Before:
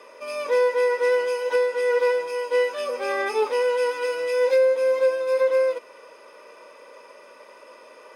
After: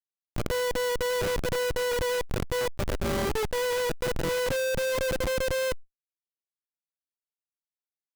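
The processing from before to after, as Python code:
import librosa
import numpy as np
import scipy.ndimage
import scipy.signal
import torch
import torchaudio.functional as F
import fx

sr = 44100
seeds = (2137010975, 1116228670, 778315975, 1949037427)

y = fx.high_shelf(x, sr, hz=4200.0, db=4.5, at=(1.13, 2.84))
y = fx.schmitt(y, sr, flips_db=-22.0)
y = fx.env_flatten(y, sr, amount_pct=70)
y = y * 10.0 ** (-4.5 / 20.0)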